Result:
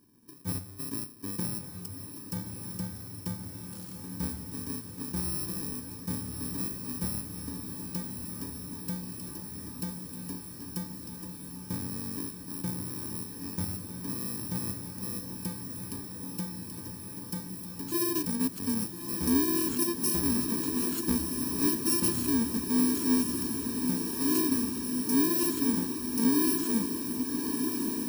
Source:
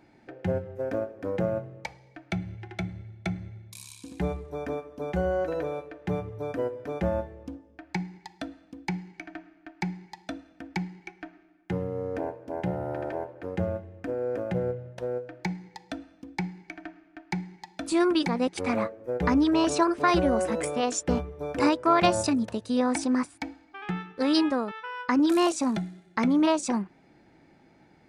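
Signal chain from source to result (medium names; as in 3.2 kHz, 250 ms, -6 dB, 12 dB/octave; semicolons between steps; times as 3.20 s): bit-reversed sample order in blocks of 64 samples; fifteen-band graphic EQ 100 Hz +4 dB, 250 Hz +10 dB, 630 Hz -6 dB, 2.5 kHz -6 dB; on a send: echo that smears into a reverb 1263 ms, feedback 79%, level -6 dB; on the sum: attacks held to a fixed rise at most 550 dB/s; trim -7.5 dB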